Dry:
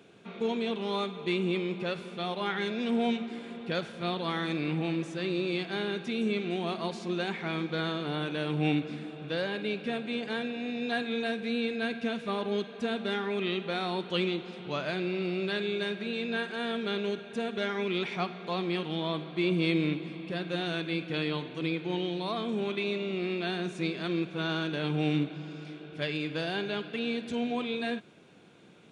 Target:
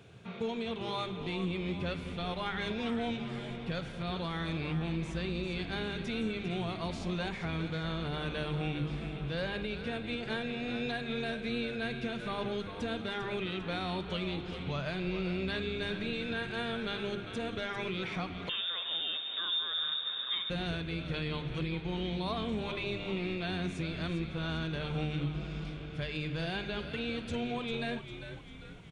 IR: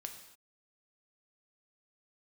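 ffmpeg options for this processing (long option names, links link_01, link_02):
-filter_complex "[0:a]lowshelf=frequency=160:width_type=q:width=1.5:gain=14,bandreject=frequency=50:width_type=h:width=6,bandreject=frequency=100:width_type=h:width=6,bandreject=frequency=150:width_type=h:width=6,bandreject=frequency=200:width_type=h:width=6,bandreject=frequency=250:width_type=h:width=6,bandreject=frequency=300:width_type=h:width=6,bandreject=frequency=350:width_type=h:width=6,bandreject=frequency=400:width_type=h:width=6,alimiter=level_in=1.5dB:limit=-24dB:level=0:latency=1:release=212,volume=-1.5dB,asplit=7[link_01][link_02][link_03][link_04][link_05][link_06][link_07];[link_02]adelay=398,afreqshift=-100,volume=-9.5dB[link_08];[link_03]adelay=796,afreqshift=-200,volume=-15.5dB[link_09];[link_04]adelay=1194,afreqshift=-300,volume=-21.5dB[link_10];[link_05]adelay=1592,afreqshift=-400,volume=-27.6dB[link_11];[link_06]adelay=1990,afreqshift=-500,volume=-33.6dB[link_12];[link_07]adelay=2388,afreqshift=-600,volume=-39.6dB[link_13];[link_01][link_08][link_09][link_10][link_11][link_12][link_13]amix=inputs=7:normalize=0,asettb=1/sr,asplit=3[link_14][link_15][link_16];[link_14]atrim=end=18.494[link_17];[link_15]atrim=start=18.49:end=20.5,asetpts=PTS-STARTPTS,afade=type=in:duration=0.004:curve=qsin,afade=type=out:start_time=2.006:duration=0.004:curve=qsin,lowpass=frequency=3200:width_type=q:width=0.5098,lowpass=frequency=3200:width_type=q:width=0.6013,lowpass=frequency=3200:width_type=q:width=0.9,lowpass=frequency=3200:width_type=q:width=2.563,afreqshift=-3800[link_18];[link_16]atrim=start=20.496[link_19];[link_17][link_18]acrossfade=duration=0.004:curve1=hsin:curve2=qsin[link_20];[link_20][link_19]acrossfade=duration=0.004:curve1=qsin:curve2=hsin"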